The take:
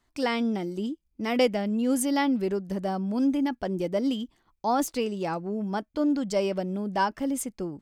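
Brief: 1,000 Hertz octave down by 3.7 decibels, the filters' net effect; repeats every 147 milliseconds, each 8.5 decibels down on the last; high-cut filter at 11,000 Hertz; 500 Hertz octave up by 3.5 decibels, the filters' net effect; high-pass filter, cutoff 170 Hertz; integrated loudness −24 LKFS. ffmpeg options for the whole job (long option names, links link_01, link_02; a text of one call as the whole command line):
ffmpeg -i in.wav -af "highpass=170,lowpass=11000,equalizer=frequency=500:width_type=o:gain=6,equalizer=frequency=1000:width_type=o:gain=-7.5,aecho=1:1:147|294|441|588:0.376|0.143|0.0543|0.0206,volume=2.5dB" out.wav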